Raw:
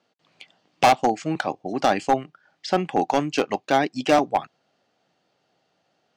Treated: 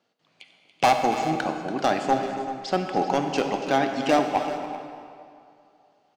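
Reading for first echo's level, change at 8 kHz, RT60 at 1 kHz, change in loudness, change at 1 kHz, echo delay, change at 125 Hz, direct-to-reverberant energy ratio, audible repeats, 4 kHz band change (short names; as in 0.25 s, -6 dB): -13.0 dB, -2.0 dB, 2.5 s, -2.0 dB, -1.5 dB, 0.284 s, -1.5 dB, 4.5 dB, 2, -1.5 dB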